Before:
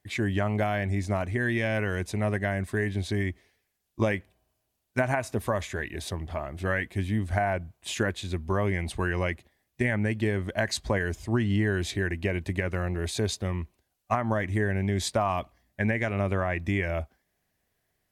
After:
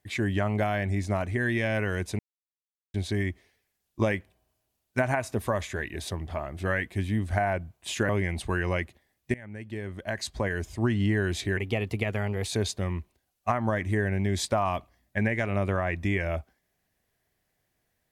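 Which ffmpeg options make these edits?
-filter_complex "[0:a]asplit=7[s0][s1][s2][s3][s4][s5][s6];[s0]atrim=end=2.19,asetpts=PTS-STARTPTS,afade=t=out:st=2.186:d=0.004:c=hsin[s7];[s1]atrim=start=2.19:end=2.94,asetpts=PTS-STARTPTS,volume=0[s8];[s2]atrim=start=2.94:end=8.092,asetpts=PTS-STARTPTS,afade=t=in:d=0.004:c=hsin[s9];[s3]atrim=start=8.588:end=9.84,asetpts=PTS-STARTPTS,afade=t=out:st=1.248:d=0.004:c=hsin:silence=0.0841395[s10];[s4]atrim=start=9.84:end=12.074,asetpts=PTS-STARTPTS,afade=t=in:d=1.48:silence=0.0841395[s11];[s5]atrim=start=12.07:end=13.09,asetpts=PTS-STARTPTS,asetrate=50715,aresample=44100[s12];[s6]atrim=start=13.086[s13];[s7][s8][s9]concat=n=3:v=0:a=1[s14];[s10][s11]concat=n=2:v=0:a=1[s15];[s14][s15]acrossfade=d=0.004:c1=hsin:c2=hsin[s16];[s16][s12]acrossfade=d=0.004:c1=hsin:c2=hsin[s17];[s17][s13]acrossfade=d=0.004:c1=hsin:c2=hsin"

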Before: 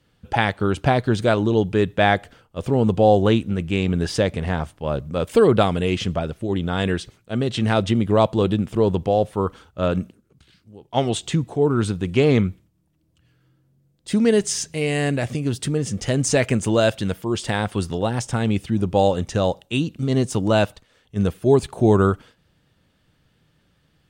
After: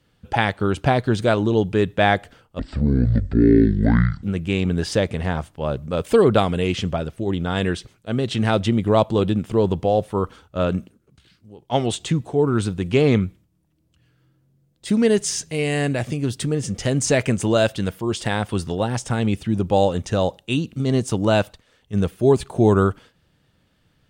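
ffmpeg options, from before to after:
-filter_complex "[0:a]asplit=3[s0][s1][s2];[s0]atrim=end=2.594[s3];[s1]atrim=start=2.59:end=3.46,asetpts=PTS-STARTPTS,asetrate=23373,aresample=44100[s4];[s2]atrim=start=3.456[s5];[s3][s4]acrossfade=d=0.004:c1=hsin:c2=hsin[s6];[s6][s5]acrossfade=d=0.004:c1=hsin:c2=hsin"

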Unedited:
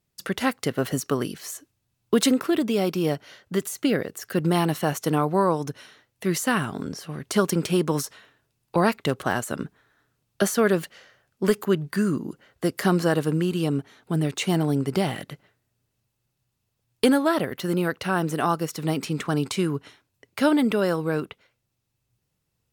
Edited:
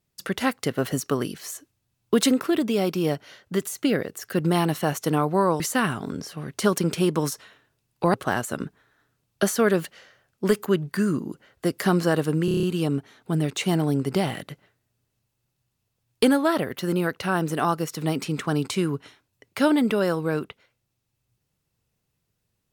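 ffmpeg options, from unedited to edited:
-filter_complex "[0:a]asplit=9[s0][s1][s2][s3][s4][s5][s6][s7][s8];[s0]atrim=end=5.602[s9];[s1]atrim=start=6.318:end=8.862[s10];[s2]atrim=start=9.128:end=13.472[s11];[s3]atrim=start=13.438:end=13.472[s12];[s4]atrim=start=13.438:end=13.472[s13];[s5]atrim=start=13.438:end=13.472[s14];[s6]atrim=start=13.438:end=13.472[s15];[s7]atrim=start=13.438:end=13.472[s16];[s8]atrim=start=13.438[s17];[s9][s10]acrossfade=d=0.004:c1=hsin:c2=hsin[s18];[s18][s11]acrossfade=d=0.004:c1=hsin:c2=hsin[s19];[s19][s12]acrossfade=d=0.004:c1=hsin:c2=hsin[s20];[s20][s13]acrossfade=d=0.004:c1=hsin:c2=hsin[s21];[s21][s14]acrossfade=d=0.004:c1=hsin:c2=hsin[s22];[s22][s15]acrossfade=d=0.004:c1=hsin:c2=hsin[s23];[s23][s16]acrossfade=d=0.004:c1=hsin:c2=hsin[s24];[s24][s17]acrossfade=d=0.004:c1=hsin:c2=hsin"

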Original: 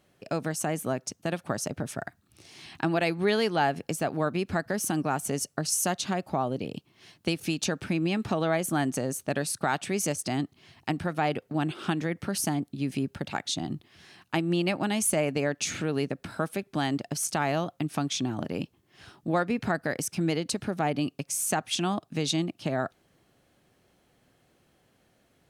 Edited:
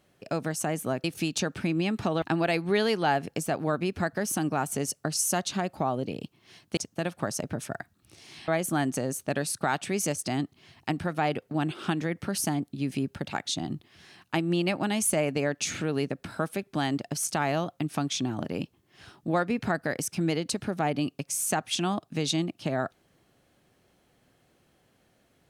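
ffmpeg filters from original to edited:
-filter_complex "[0:a]asplit=5[s0][s1][s2][s3][s4];[s0]atrim=end=1.042[s5];[s1]atrim=start=7.298:end=8.482[s6];[s2]atrim=start=2.748:end=7.302[s7];[s3]atrim=start=1.038:end=2.752[s8];[s4]atrim=start=8.478[s9];[s5][s6]acrossfade=d=0.004:c1=hsin:c2=hsin[s10];[s10][s7]acrossfade=d=0.004:c1=hsin:c2=hsin[s11];[s11][s8]acrossfade=d=0.004:c1=hsin:c2=hsin[s12];[s12][s9]acrossfade=d=0.004:c1=hsin:c2=hsin"

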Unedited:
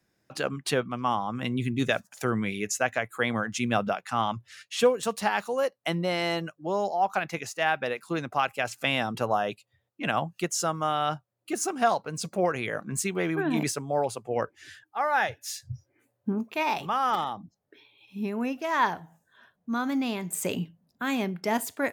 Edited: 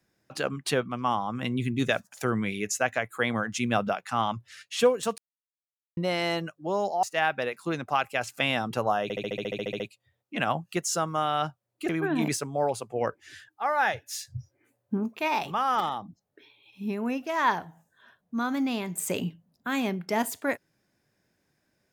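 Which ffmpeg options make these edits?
-filter_complex "[0:a]asplit=16[s0][s1][s2][s3][s4][s5][s6][s7][s8][s9][s10][s11][s12][s13][s14][s15];[s0]atrim=end=5.18,asetpts=PTS-STARTPTS,afade=t=out:st=5.176:d=0.004:c=hsin[s16];[s1]atrim=start=5.18:end=5.97,asetpts=PTS-STARTPTS,volume=0[s17];[s2]atrim=start=5.97:end=7.032,asetpts=PTS-STARTPTS,afade=t=in:d=0.004:c=hsin[s18];[s3]atrim=start=7.468:end=9.542[s19];[s4]atrim=start=9.468:end=9.542[s20];[s5]atrim=start=9.468:end=9.542[s21];[s6]atrim=start=9.468:end=9.542[s22];[s7]atrim=start=9.468:end=9.542[s23];[s8]atrim=start=9.468:end=9.542[s24];[s9]atrim=start=9.468:end=9.542[s25];[s10]atrim=start=9.468:end=9.542[s26];[s11]atrim=start=9.468:end=9.542[s27];[s12]atrim=start=9.468:end=9.542[s28];[s13]atrim=start=9.468:end=9.542[s29];[s14]atrim=start=9.468:end=11.562[s30];[s15]atrim=start=13.238[s31];[s16][s17][s18]concat=n=3:v=0:a=1[s32];[s32][s19]acrossfade=d=0.004:c1=hsin:c2=hsin[s33];[s33][s20]acrossfade=d=0.004:c1=hsin:c2=hsin[s34];[s34][s21]acrossfade=d=0.004:c1=hsin:c2=hsin[s35];[s35][s22]acrossfade=d=0.004:c1=hsin:c2=hsin[s36];[s36][s23]acrossfade=d=0.004:c1=hsin:c2=hsin[s37];[s37][s24]acrossfade=d=0.004:c1=hsin:c2=hsin[s38];[s38][s25]acrossfade=d=0.004:c1=hsin:c2=hsin[s39];[s39][s26]acrossfade=d=0.004:c1=hsin:c2=hsin[s40];[s40][s27]acrossfade=d=0.004:c1=hsin:c2=hsin[s41];[s41][s28]acrossfade=d=0.004:c1=hsin:c2=hsin[s42];[s42][s29]acrossfade=d=0.004:c1=hsin:c2=hsin[s43];[s43][s30]acrossfade=d=0.004:c1=hsin:c2=hsin[s44];[s44][s31]acrossfade=d=0.004:c1=hsin:c2=hsin"

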